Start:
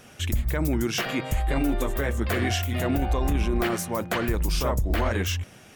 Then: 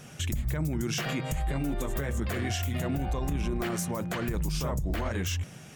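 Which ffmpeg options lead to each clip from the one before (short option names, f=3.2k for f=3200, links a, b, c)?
-af "equalizer=f=150:w=2.6:g=12.5,alimiter=limit=-21dB:level=0:latency=1:release=109,equalizer=f=7.1k:w=1.6:g=4.5,volume=-1dB"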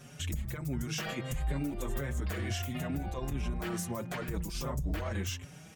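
-filter_complex "[0:a]asplit=2[a][b];[b]adelay=5.3,afreqshift=1.5[c];[a][c]amix=inputs=2:normalize=1,volume=-1.5dB"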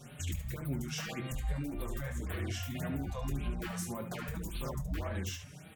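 -af "alimiter=level_in=4dB:limit=-24dB:level=0:latency=1:release=465,volume=-4dB,aecho=1:1:22|72:0.355|0.376,afftfilt=real='re*(1-between(b*sr/1024,280*pow(6500/280,0.5+0.5*sin(2*PI*1.8*pts/sr))/1.41,280*pow(6500/280,0.5+0.5*sin(2*PI*1.8*pts/sr))*1.41))':imag='im*(1-between(b*sr/1024,280*pow(6500/280,0.5+0.5*sin(2*PI*1.8*pts/sr))/1.41,280*pow(6500/280,0.5+0.5*sin(2*PI*1.8*pts/sr))*1.41))':win_size=1024:overlap=0.75"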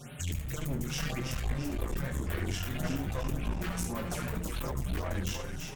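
-filter_complex "[0:a]asplit=2[a][b];[b]asplit=5[c][d][e][f][g];[c]adelay=334,afreqshift=-110,volume=-5.5dB[h];[d]adelay=668,afreqshift=-220,volume=-13.2dB[i];[e]adelay=1002,afreqshift=-330,volume=-21dB[j];[f]adelay=1336,afreqshift=-440,volume=-28.7dB[k];[g]adelay=1670,afreqshift=-550,volume=-36.5dB[l];[h][i][j][k][l]amix=inputs=5:normalize=0[m];[a][m]amix=inputs=2:normalize=0,aeval=exprs='clip(val(0),-1,0.01)':c=same,volume=4.5dB"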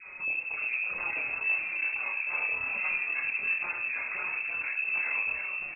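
-filter_complex "[0:a]lowpass=f=2.3k:t=q:w=0.5098,lowpass=f=2.3k:t=q:w=0.6013,lowpass=f=2.3k:t=q:w=0.9,lowpass=f=2.3k:t=q:w=2.563,afreqshift=-2700,asplit=2[a][b];[b]adelay=28,volume=-4.5dB[c];[a][c]amix=inputs=2:normalize=0"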